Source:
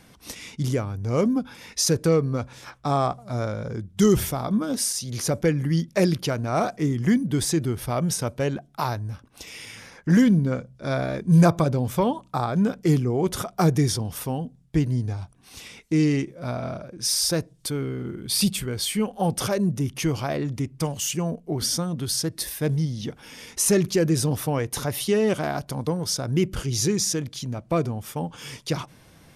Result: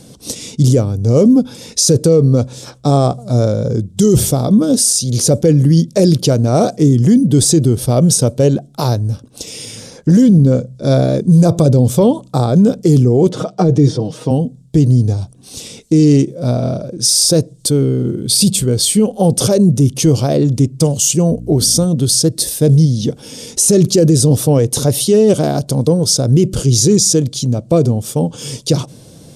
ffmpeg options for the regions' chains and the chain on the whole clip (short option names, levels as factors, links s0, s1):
-filter_complex "[0:a]asettb=1/sr,asplit=3[s0][s1][s2];[s0]atrim=end=13.294[s3];[s1]atrim=start=13.29:end=14.31,asetpts=PTS-STARTPTS,afade=t=in:d=0.004:c=qsin,afade=t=out:st=1.016:d=0.004:c=qsin,acrossover=split=2600[s4][s5];[s5]acompressor=threshold=0.01:ratio=4:attack=1:release=60[s6];[s4][s6]amix=inputs=2:normalize=0,highpass=170,lowpass=4900,aecho=1:1:6.4:0.64,atrim=end_sample=44982[s7];[s2]atrim=start=14.306[s8];[s3][s7]acrossfade=d=0.004:c1=hsin:c2=qsin[s9];[s9][s8]acrossfade=d=0.004:c1=qsin:c2=hsin,asettb=1/sr,asplit=3[s10][s11][s12];[s10]atrim=end=21.304[s13];[s11]atrim=start=21.3:end=21.85,asetpts=PTS-STARTPTS,afade=t=in:d=0.004:c=qsin,afade=t=out:st=0.546:d=0.004:c=qsin,highshelf=f=11000:g=8,aeval=exprs='val(0)+0.0112*(sin(2*PI*60*n/s)+sin(2*PI*2*60*n/s)/2+sin(2*PI*3*60*n/s)/3+sin(2*PI*4*60*n/s)/4+sin(2*PI*5*60*n/s)/5)':c=same[s14];[s12]atrim=start=21.846[s15];[s13][s14]acrossfade=d=0.004:c1=hsin:c2=qsin[s16];[s16][s15]acrossfade=d=0.004:c1=qsin:c2=hsin,equalizer=f=125:t=o:w=1:g=9,equalizer=f=250:t=o:w=1:g=6,equalizer=f=500:t=o:w=1:g=10,equalizer=f=1000:t=o:w=1:g=-4,equalizer=f=2000:t=o:w=1:g=-9,equalizer=f=4000:t=o:w=1:g=6,equalizer=f=8000:t=o:w=1:g=11,alimiter=limit=0.376:level=0:latency=1:release=18,volume=1.88"